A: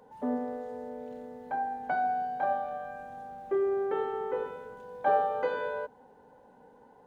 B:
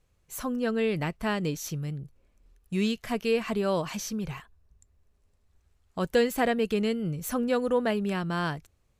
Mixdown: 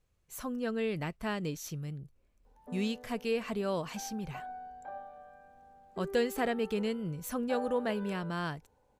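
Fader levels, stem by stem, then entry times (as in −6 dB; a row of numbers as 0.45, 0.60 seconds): −14.5, −6.0 decibels; 2.45, 0.00 seconds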